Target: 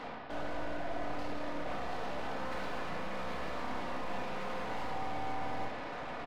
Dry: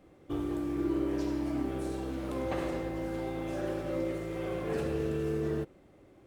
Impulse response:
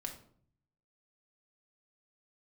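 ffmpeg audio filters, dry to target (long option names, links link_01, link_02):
-filter_complex "[0:a]highpass=frequency=250:poles=1,areverse,acompressor=threshold=-51dB:ratio=5,areverse,aeval=exprs='0.01*(cos(1*acos(clip(val(0)/0.01,-1,1)))-cos(1*PI/2))+0.000891*(cos(8*acos(clip(val(0)/0.01,-1,1)))-cos(8*PI/2))':channel_layout=same,aresample=11025,aeval=exprs='abs(val(0))':channel_layout=same,aresample=44100,asplit=2[link_01][link_02];[link_02]highpass=frequency=720:poles=1,volume=32dB,asoftclip=type=tanh:threshold=-41.5dB[link_03];[link_01][link_03]amix=inputs=2:normalize=0,lowpass=frequency=1800:poles=1,volume=-6dB[link_04];[1:a]atrim=start_sample=2205[link_05];[link_04][link_05]afir=irnorm=-1:irlink=0,volume=11dB"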